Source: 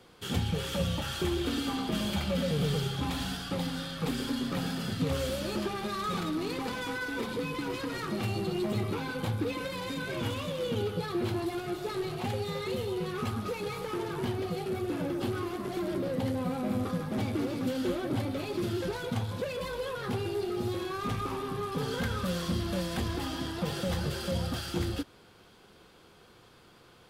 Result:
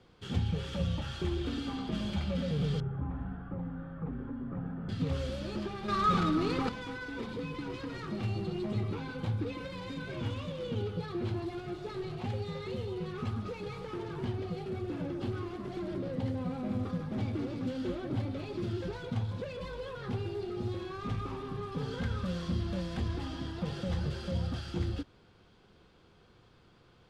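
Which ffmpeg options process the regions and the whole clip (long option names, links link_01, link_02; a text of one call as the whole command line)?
ffmpeg -i in.wav -filter_complex "[0:a]asettb=1/sr,asplit=3[link_01][link_02][link_03];[link_01]atrim=end=2.804[link_04];[link_02]atrim=start=2.8:end=4.89,asetpts=PTS-STARTPTS,afade=type=in:duration=0.004:curve=qsin,afade=type=out:start_time=2.086:duration=0.004:curve=qsin,lowpass=frequency=1500:width=0.5412,lowpass=frequency=1500:width=1.3066,acrossover=split=160|3000[link_05][link_06][link_07];[link_06]acompressor=threshold=-37dB:ratio=2:attack=3.2:release=140:knee=2.83:detection=peak[link_08];[link_05][link_08][link_07]amix=inputs=3:normalize=0[link_09];[link_03]atrim=start=4.886[link_10];[link_04][link_09]acrossfade=duration=0.004:curve1=hsin:curve2=qsin[link_11];[link_11][link_10]acrossfade=duration=0.004:curve1=qsin:curve2=hsin,asettb=1/sr,asplit=3[link_12][link_13][link_14];[link_12]atrim=end=5.884[link_15];[link_13]atrim=start=5.88:end=6.69,asetpts=PTS-STARTPTS,afade=type=in:duration=0.004:curve=qsin,afade=type=out:start_time=0.806:duration=0.004:curve=qsin,equalizer=frequency=1300:width_type=o:width=0.32:gain=8,acontrast=90[link_16];[link_14]atrim=start=6.686[link_17];[link_15][link_16]acrossfade=duration=0.004:curve1=hsin:curve2=qsin[link_18];[link_18][link_17]acrossfade=duration=0.004:curve1=qsin:curve2=hsin,lowpass=5700,lowshelf=frequency=190:gain=9.5,volume=-7dB" out.wav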